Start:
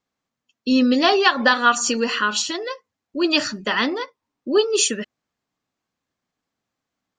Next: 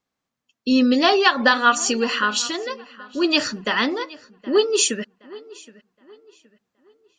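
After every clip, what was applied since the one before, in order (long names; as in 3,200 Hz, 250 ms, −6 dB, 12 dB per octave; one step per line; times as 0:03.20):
feedback echo with a low-pass in the loop 770 ms, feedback 35%, low-pass 4,400 Hz, level −20.5 dB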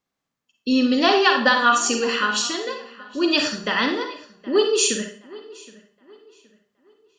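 four-comb reverb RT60 0.44 s, DRR 4 dB
level −1.5 dB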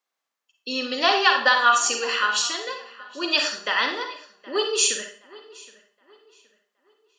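high-pass filter 600 Hz 12 dB per octave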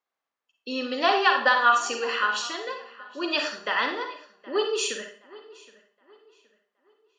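low-pass filter 1,900 Hz 6 dB per octave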